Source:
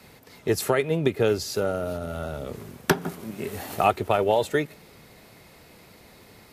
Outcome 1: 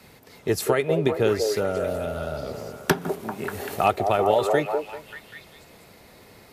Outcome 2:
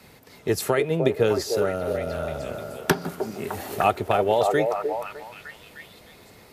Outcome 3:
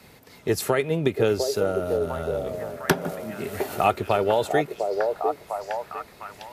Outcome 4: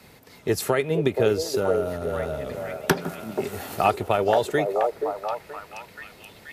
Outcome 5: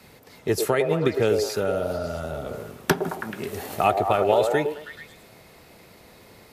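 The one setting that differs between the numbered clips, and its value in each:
delay with a stepping band-pass, time: 0.195, 0.304, 0.703, 0.478, 0.108 s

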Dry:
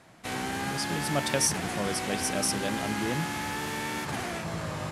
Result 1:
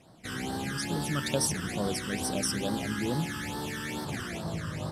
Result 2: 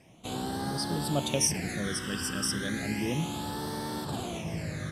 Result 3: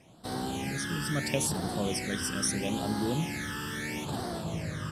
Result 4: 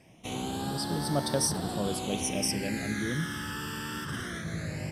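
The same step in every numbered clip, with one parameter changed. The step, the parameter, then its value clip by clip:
phaser, rate: 2.3, 0.33, 0.76, 0.2 Hz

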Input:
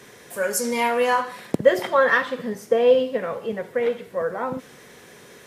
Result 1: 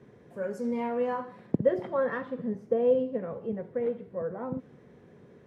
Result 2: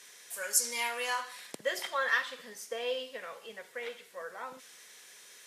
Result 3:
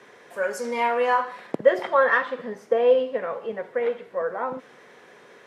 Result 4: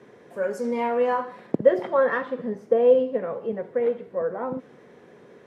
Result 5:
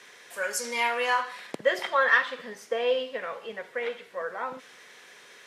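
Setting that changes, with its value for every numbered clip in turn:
band-pass, frequency: 120, 7400, 930, 340, 2700 Hz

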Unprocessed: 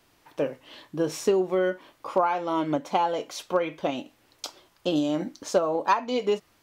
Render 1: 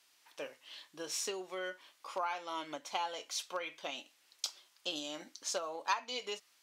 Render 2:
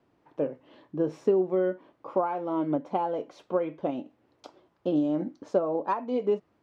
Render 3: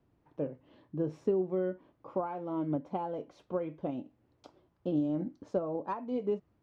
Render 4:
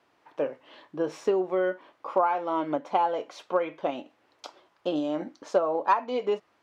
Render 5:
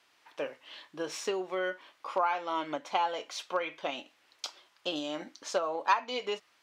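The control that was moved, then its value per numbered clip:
band-pass, frequency: 6400, 270, 100, 820, 2500 Hz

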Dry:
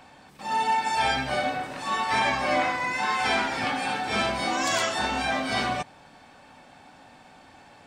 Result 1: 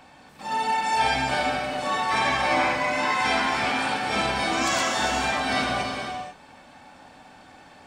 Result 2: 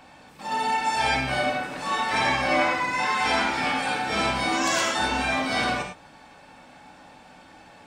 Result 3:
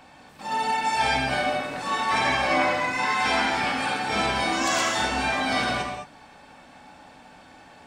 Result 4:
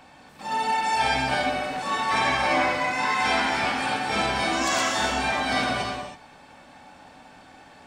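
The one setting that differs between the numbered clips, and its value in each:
non-linear reverb, gate: 0.52, 0.13, 0.24, 0.35 s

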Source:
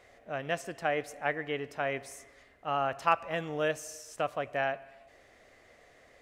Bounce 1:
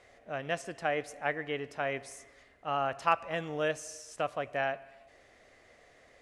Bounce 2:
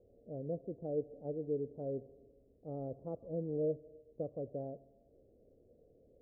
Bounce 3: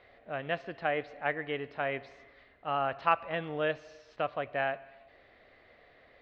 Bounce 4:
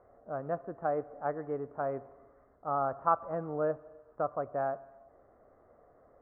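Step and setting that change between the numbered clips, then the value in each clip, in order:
elliptic low-pass, frequency: 11000, 500, 4200, 1300 Hz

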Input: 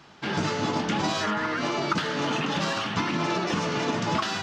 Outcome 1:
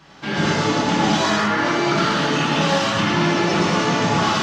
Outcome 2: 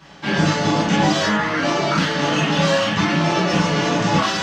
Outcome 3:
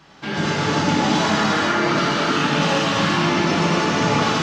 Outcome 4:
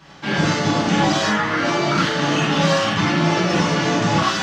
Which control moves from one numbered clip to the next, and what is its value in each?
non-linear reverb, gate: 270, 80, 530, 120 ms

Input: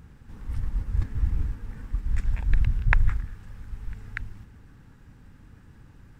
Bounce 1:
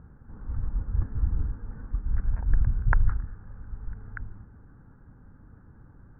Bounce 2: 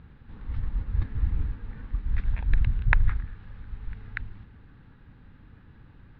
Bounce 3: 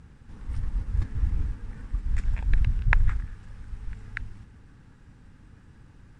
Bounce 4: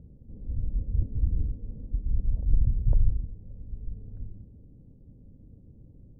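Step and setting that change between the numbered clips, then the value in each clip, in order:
elliptic low-pass, frequency: 1500, 4000, 10000, 580 Hz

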